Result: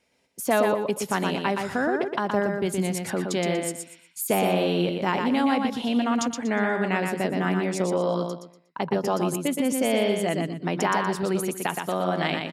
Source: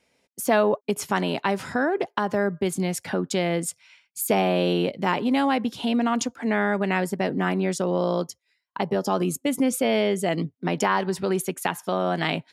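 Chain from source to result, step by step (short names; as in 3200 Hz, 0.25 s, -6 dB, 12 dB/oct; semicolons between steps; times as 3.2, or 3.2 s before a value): 8.26–8.8 high shelf 3400 Hz -9 dB; feedback echo 0.12 s, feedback 26%, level -4.5 dB; gain -2 dB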